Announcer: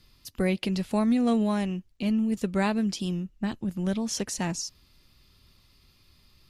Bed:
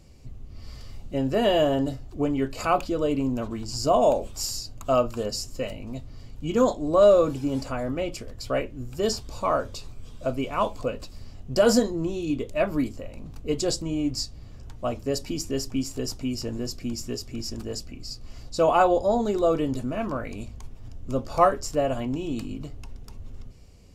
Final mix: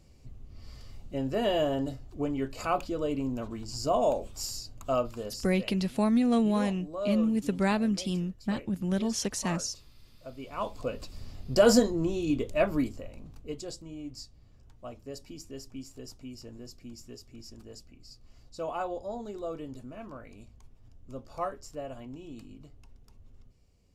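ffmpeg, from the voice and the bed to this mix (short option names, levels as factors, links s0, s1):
-filter_complex "[0:a]adelay=5050,volume=0.891[s0];[1:a]volume=3.16,afade=t=out:st=4.91:d=0.94:silence=0.281838,afade=t=in:st=10.34:d=0.94:silence=0.158489,afade=t=out:st=12.54:d=1.11:silence=0.211349[s1];[s0][s1]amix=inputs=2:normalize=0"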